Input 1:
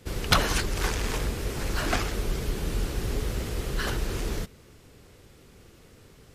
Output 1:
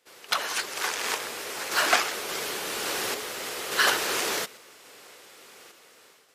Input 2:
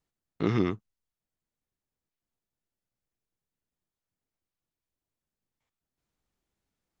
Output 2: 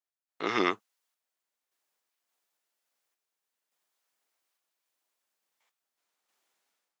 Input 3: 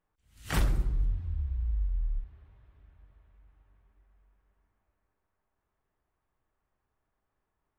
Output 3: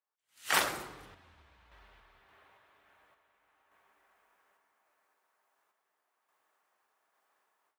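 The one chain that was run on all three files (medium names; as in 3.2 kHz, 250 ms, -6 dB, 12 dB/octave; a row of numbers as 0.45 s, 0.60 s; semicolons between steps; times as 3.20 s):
high-pass 670 Hz 12 dB/octave; level rider gain up to 15.5 dB; random-step tremolo; trim -3.5 dB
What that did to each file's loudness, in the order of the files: +2.0 LU, -1.0 LU, +1.5 LU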